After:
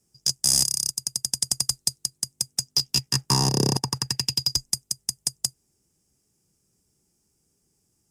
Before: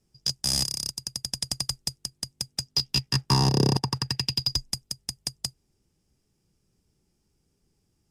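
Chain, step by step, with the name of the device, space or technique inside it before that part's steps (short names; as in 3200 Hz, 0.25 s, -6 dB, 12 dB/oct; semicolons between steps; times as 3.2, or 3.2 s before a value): budget condenser microphone (HPF 96 Hz 6 dB/oct; resonant high shelf 5300 Hz +8 dB, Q 1.5); 1.7–2.17 bell 4100 Hz +7.5 dB 0.27 oct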